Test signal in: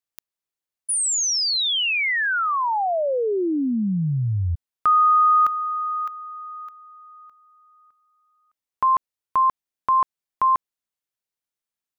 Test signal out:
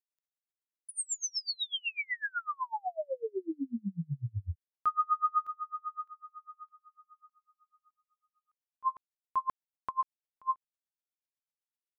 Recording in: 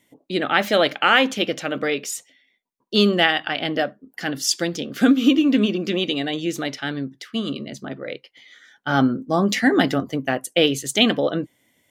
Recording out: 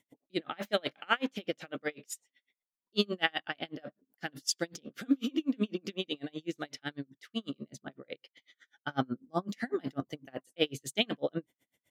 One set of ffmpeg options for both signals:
ffmpeg -i in.wav -af "aeval=exprs='val(0)*pow(10,-36*(0.5-0.5*cos(2*PI*8*n/s))/20)':channel_layout=same,volume=-7.5dB" out.wav

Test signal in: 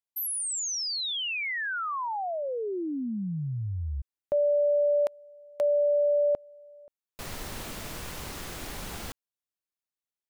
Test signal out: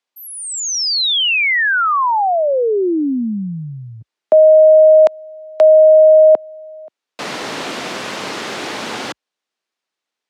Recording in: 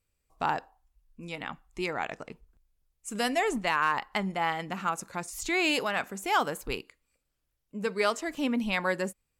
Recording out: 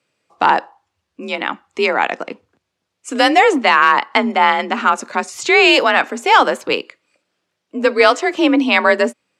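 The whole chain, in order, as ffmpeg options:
ffmpeg -i in.wav -af "highpass=210,lowpass=5000,afreqshift=42,apsyclip=18.5dB,volume=-2dB" out.wav

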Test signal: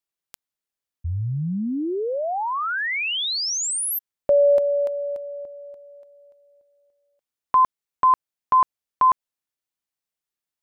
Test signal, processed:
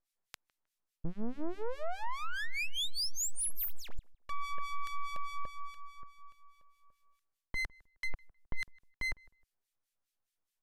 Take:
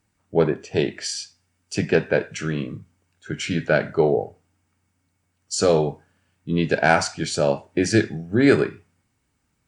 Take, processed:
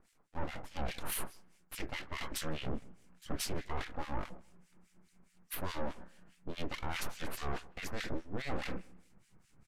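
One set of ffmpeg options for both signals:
ffmpeg -i in.wav -filter_complex "[0:a]asubboost=boost=4:cutoff=110,areverse,acompressor=threshold=-30dB:ratio=8:attack=0.94:release=337:knee=1:detection=peak,areverse,aeval=exprs='abs(val(0))':channel_layout=same,acrossover=split=1600[link_01][link_02];[link_01]aeval=exprs='val(0)*(1-1/2+1/2*cos(2*PI*4.8*n/s))':channel_layout=same[link_03];[link_02]aeval=exprs='val(0)*(1-1/2-1/2*cos(2*PI*4.8*n/s))':channel_layout=same[link_04];[link_03][link_04]amix=inputs=2:normalize=0,asoftclip=type=tanh:threshold=-32.5dB,asplit=2[link_05][link_06];[link_06]adelay=156,lowpass=frequency=1800:poles=1,volume=-23dB,asplit=2[link_07][link_08];[link_08]adelay=156,lowpass=frequency=1800:poles=1,volume=0.32[link_09];[link_05][link_07][link_09]amix=inputs=3:normalize=0,aresample=32000,aresample=44100,volume=7.5dB" out.wav

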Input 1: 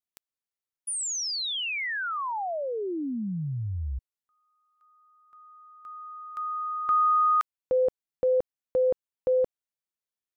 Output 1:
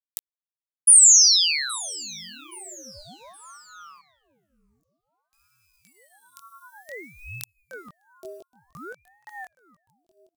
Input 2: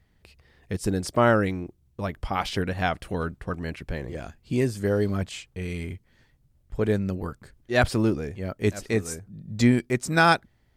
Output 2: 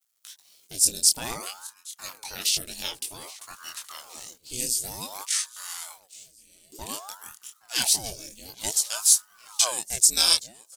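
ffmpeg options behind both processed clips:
ffmpeg -i in.wav -filter_complex "[0:a]bandreject=frequency=2200:width=19,aexciter=amount=11.6:drive=3.7:freq=2600,adynamicequalizer=threshold=0.01:dfrequency=160:dqfactor=1.8:tfrequency=160:tqfactor=1.8:attack=5:release=100:ratio=0.375:range=2:mode=cutabove:tftype=bell,acrusher=bits=7:mix=0:aa=0.5,bass=frequency=250:gain=1,treble=frequency=4000:gain=14,flanger=delay=18.5:depth=7.7:speed=0.35,asplit=2[link_01][link_02];[link_02]aecho=0:1:821|1642|2463:0.0891|0.033|0.0122[link_03];[link_01][link_03]amix=inputs=2:normalize=0,aeval=exprs='val(0)*sin(2*PI*740*n/s+740*0.85/0.54*sin(2*PI*0.54*n/s))':channel_layout=same,volume=-11dB" out.wav

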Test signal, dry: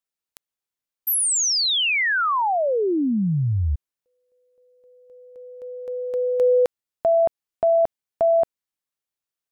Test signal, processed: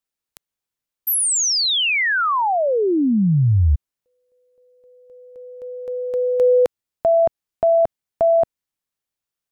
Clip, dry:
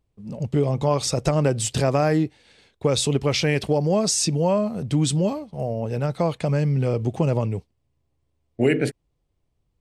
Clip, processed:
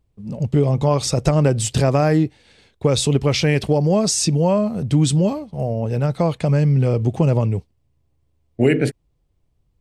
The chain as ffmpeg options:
ffmpeg -i in.wav -af "lowshelf=frequency=200:gain=5.5,volume=2dB" out.wav

